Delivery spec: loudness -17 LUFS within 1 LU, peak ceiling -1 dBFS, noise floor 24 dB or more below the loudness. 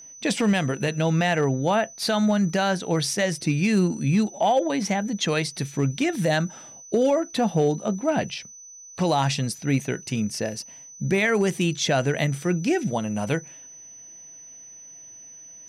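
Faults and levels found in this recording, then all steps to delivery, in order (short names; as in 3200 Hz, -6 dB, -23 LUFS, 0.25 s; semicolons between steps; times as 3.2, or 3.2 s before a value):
clipped 0.2%; flat tops at -13.5 dBFS; steady tone 6000 Hz; tone level -42 dBFS; loudness -24.0 LUFS; peak -13.5 dBFS; loudness target -17.0 LUFS
-> clip repair -13.5 dBFS; notch 6000 Hz, Q 30; gain +7 dB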